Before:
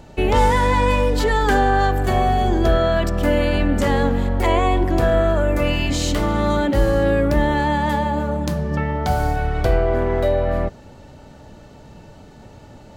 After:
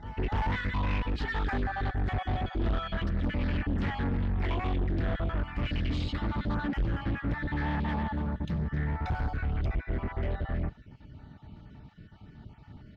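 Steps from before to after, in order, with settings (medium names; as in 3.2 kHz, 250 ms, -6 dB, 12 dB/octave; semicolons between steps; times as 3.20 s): random holes in the spectrogram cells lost 28%; comb of notches 530 Hz; on a send: reverse echo 295 ms -17 dB; on the sum: harmony voices -5 st -12 dB; peaking EQ 560 Hz -14.5 dB 2 oct; in parallel at -6 dB: overload inside the chain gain 27.5 dB; on the sum: distance through air 320 m; saturation -19 dBFS, distortion -15 dB; loudspeaker Doppler distortion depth 0.27 ms; trim -4 dB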